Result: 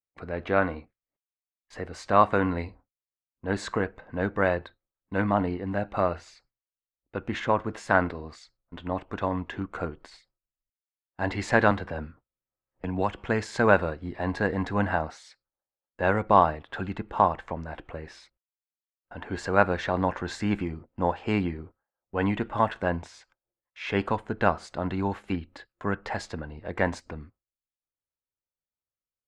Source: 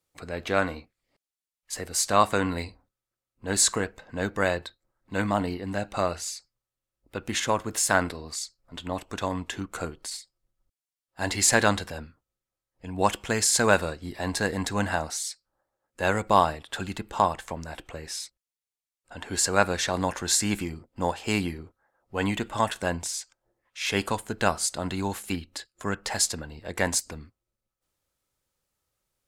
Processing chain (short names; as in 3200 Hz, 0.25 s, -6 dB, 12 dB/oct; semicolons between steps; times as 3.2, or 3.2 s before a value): gate with hold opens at -42 dBFS; LPF 1900 Hz 12 dB/oct; 11.71–13.18 three-band squash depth 70%; gain +1.5 dB